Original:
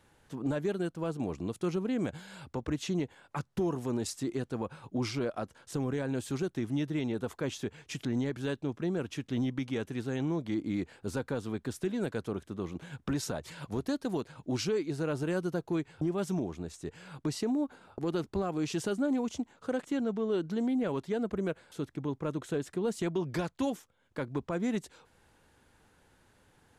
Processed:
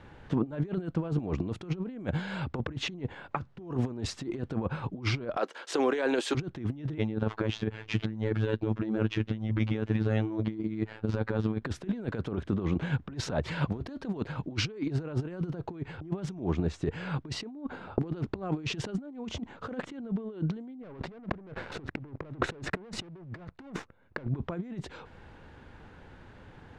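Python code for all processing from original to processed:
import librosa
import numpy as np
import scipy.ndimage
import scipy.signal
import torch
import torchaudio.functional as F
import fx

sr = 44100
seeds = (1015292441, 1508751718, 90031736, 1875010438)

y = fx.chain(x, sr, fx.highpass(hz=350.0, slope=24),
    fx.high_shelf(hz=2200.0, db=9.5), at=(5.37, 6.35))
y = fx.chain(y, sr, fx.median_filter(points=5),
    fx.robotise(hz=109.0), at=(6.98, 11.62))
y = fx.chain(y, sr, fx.high_shelf(hz=3200.0, db=-7.0),
    fx.notch(hz=3200.0, q=6.3),
    fx.leveller(passes=3), at=(20.83, 24.27))
y = scipy.signal.sosfilt(scipy.signal.butter(2, 3000.0, 'lowpass', fs=sr, output='sos'), y)
y = fx.low_shelf(y, sr, hz=230.0, db=5.0)
y = fx.over_compress(y, sr, threshold_db=-36.0, ratio=-0.5)
y = y * librosa.db_to_amplitude(5.0)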